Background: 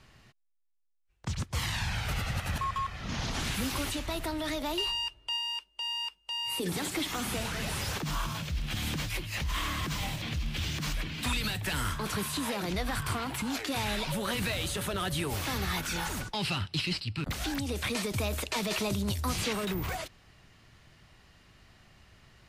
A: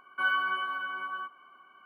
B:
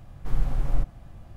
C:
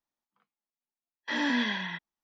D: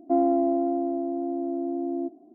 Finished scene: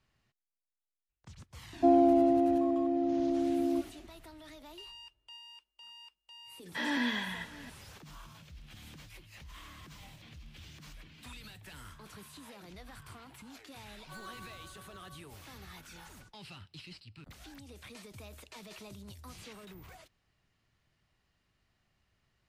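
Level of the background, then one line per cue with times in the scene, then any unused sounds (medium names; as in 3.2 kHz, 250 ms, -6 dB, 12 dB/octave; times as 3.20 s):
background -18 dB
1.73 s: add D -1 dB
5.47 s: add C -4 dB + delay 665 ms -18.5 dB
13.91 s: add A -14 dB + median filter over 25 samples
not used: B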